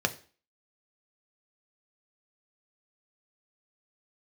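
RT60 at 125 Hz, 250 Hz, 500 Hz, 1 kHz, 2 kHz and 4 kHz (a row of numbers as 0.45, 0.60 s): 0.35, 0.45, 0.40, 0.40, 0.40, 0.40 s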